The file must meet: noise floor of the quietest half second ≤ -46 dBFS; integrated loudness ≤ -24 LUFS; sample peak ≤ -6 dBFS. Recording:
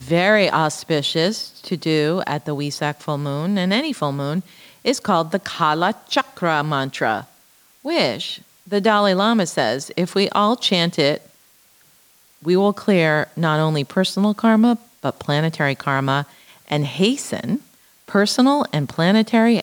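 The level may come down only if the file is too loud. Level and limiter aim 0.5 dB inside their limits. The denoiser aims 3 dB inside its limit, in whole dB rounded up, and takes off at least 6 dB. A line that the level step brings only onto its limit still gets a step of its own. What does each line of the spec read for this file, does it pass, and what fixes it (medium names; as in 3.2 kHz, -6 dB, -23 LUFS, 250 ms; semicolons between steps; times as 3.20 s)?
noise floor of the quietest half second -54 dBFS: pass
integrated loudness -19.5 LUFS: fail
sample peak -4.5 dBFS: fail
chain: trim -5 dB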